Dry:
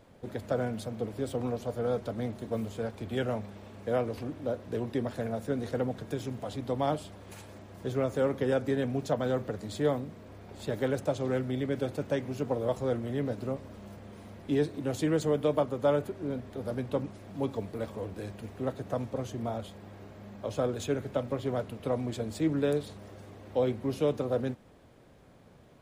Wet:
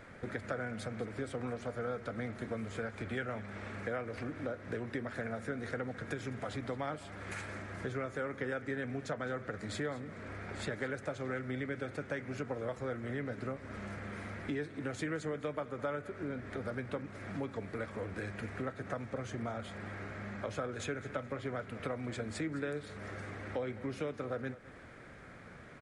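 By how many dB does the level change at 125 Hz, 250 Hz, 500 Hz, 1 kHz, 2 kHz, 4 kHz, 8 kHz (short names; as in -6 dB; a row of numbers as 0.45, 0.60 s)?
-6.5, -7.5, -9.0, -5.0, +3.5, -5.0, -4.5 dB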